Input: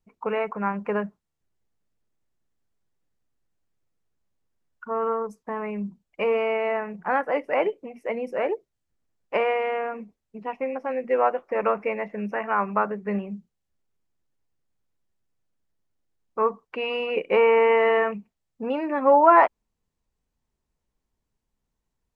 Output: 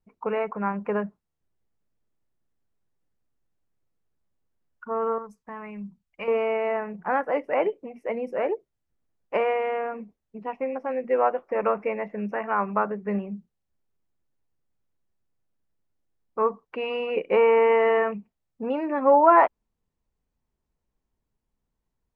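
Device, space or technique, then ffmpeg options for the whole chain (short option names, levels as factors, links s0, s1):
behind a face mask: -filter_complex "[0:a]highshelf=f=2400:g=-7.5,asettb=1/sr,asplit=3[s0][s1][s2];[s0]atrim=end=5.184[s3];[s1]atrim=start=5.18:end=6.28,asetpts=PTS-STARTPTS,afade=t=in:d=0.004:c=qsin,afade=t=out:st=1.096:d=0.004:c=qsin,equalizer=f=420:t=o:w=2.2:g=-11.5[s4];[s2]atrim=start=6.276[s5];[s3][s4]acrossfade=d=0.004:c1=hsin:c2=qsin[s6];[s6][s5]acrossfade=d=0.004:c1=qsin:c2=hsin"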